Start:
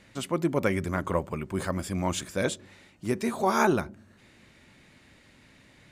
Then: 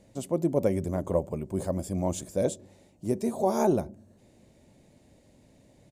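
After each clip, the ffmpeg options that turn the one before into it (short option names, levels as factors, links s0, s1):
-af "firequalizer=gain_entry='entry(370,0);entry(600,4);entry(1300,-17);entry(6900,-2)':delay=0.05:min_phase=1"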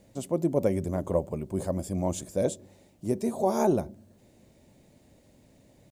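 -af "acrusher=bits=11:mix=0:aa=0.000001"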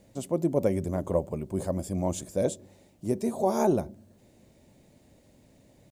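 -af anull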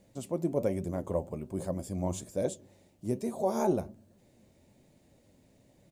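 -af "flanger=delay=5:depth=6.8:regen=74:speed=1.2:shape=triangular"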